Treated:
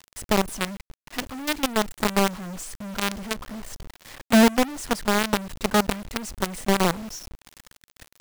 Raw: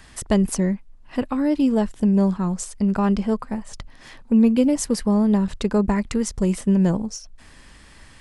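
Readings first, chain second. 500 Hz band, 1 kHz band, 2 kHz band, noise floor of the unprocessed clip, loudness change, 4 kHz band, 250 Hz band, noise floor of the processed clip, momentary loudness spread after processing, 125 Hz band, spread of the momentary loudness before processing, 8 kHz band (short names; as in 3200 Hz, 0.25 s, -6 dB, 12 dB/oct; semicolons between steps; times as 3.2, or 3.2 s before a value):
-1.5 dB, +5.0 dB, +9.5 dB, -48 dBFS, -3.5 dB, +9.0 dB, -7.0 dB, under -85 dBFS, 18 LU, -8.5 dB, 11 LU, +0.5 dB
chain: companded quantiser 2-bit; gain -9 dB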